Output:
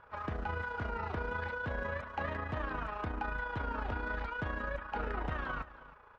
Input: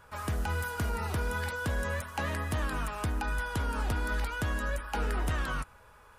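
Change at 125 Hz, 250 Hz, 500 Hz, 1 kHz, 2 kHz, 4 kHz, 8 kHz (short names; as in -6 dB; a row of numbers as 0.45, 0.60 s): -7.5 dB, -5.0 dB, -2.0 dB, -1.5 dB, -3.0 dB, -10.5 dB, under -25 dB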